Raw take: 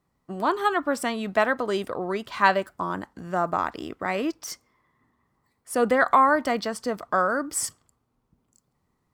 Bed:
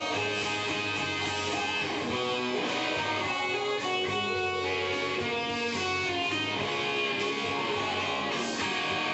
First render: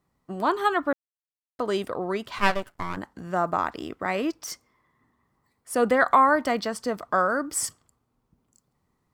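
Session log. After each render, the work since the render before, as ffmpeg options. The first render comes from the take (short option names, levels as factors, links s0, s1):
-filter_complex "[0:a]asettb=1/sr,asplit=3[s0][s1][s2];[s0]atrim=end=2.384[s3];[s1]atrim=start=2.38:end=2.97,asetpts=PTS-STARTPTS,afade=t=in:d=0.004:c=qsin,afade=t=out:st=0.586:d=0.004:c=qsin,aeval=exprs='max(val(0),0)':c=same[s4];[s2]atrim=start=2.966[s5];[s3][s4]acrossfade=d=0.004:c1=hsin:c2=qsin[s6];[s6][s5]acrossfade=d=0.004:c1=qsin:c2=hsin,asplit=3[s7][s8][s9];[s7]atrim=end=0.93,asetpts=PTS-STARTPTS,afade=t=out:st=0.926:d=0.004:c=hsin[s10];[s8]atrim=start=0.93:end=1.59,asetpts=PTS-STARTPTS,volume=0[s11];[s9]atrim=start=1.59,asetpts=PTS-STARTPTS,afade=t=in:d=0.004:c=hsin[s12];[s10][s11][s12]concat=n=3:v=0:a=1"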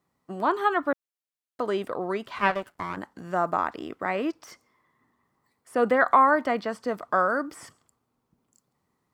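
-filter_complex "[0:a]acrossover=split=2900[s0][s1];[s1]acompressor=threshold=0.00316:ratio=4:attack=1:release=60[s2];[s0][s2]amix=inputs=2:normalize=0,highpass=f=170:p=1"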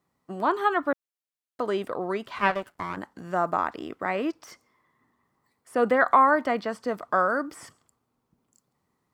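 -af anull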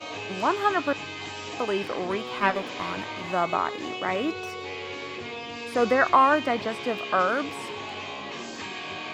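-filter_complex "[1:a]volume=0.531[s0];[0:a][s0]amix=inputs=2:normalize=0"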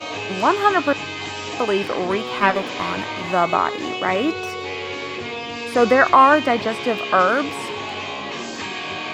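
-af "volume=2.24,alimiter=limit=0.891:level=0:latency=1"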